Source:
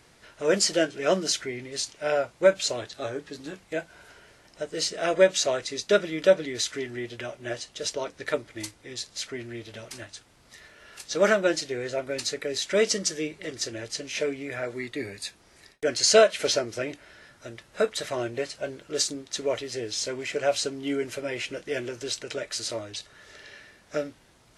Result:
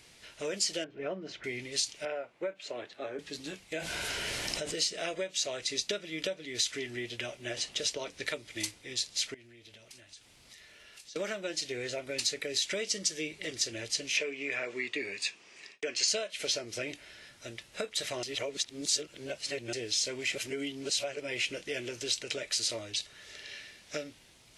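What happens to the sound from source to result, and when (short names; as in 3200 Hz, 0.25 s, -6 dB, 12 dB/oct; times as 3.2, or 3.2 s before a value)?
0.84–1.44 LPF 1300 Hz
2.05–3.19 three-band isolator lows -16 dB, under 200 Hz, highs -20 dB, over 2400 Hz
3.76–4.76 fast leveller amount 70%
7.57–8.79 three-band squash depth 40%
9.34–11.16 compressor, threshold -51 dBFS
14.17–16.08 speaker cabinet 200–7700 Hz, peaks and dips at 420 Hz +4 dB, 1100 Hz +7 dB, 1800 Hz +3 dB, 2600 Hz +8 dB, 4000 Hz -4 dB
18.23–19.73 reverse
20.35–21.2 reverse
23.49–24.04 bell 4200 Hz +3 dB 2.1 oct
whole clip: compressor 6:1, threshold -29 dBFS; resonant high shelf 1900 Hz +6.5 dB, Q 1.5; gain -4 dB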